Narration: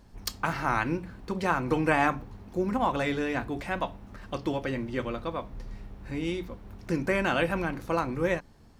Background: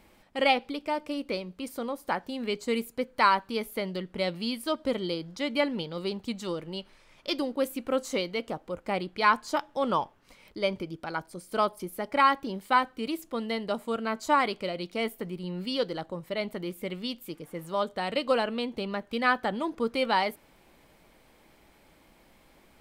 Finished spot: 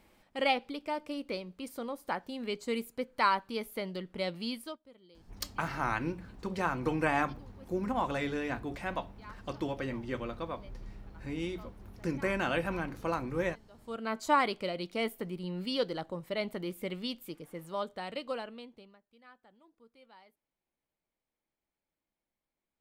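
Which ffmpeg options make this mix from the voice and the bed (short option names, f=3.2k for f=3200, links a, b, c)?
-filter_complex "[0:a]adelay=5150,volume=-5dB[a];[1:a]volume=21dB,afade=t=out:st=4.55:d=0.24:silence=0.0668344,afade=t=in:st=13.74:d=0.43:silence=0.0501187,afade=t=out:st=16.99:d=2:silence=0.0316228[b];[a][b]amix=inputs=2:normalize=0"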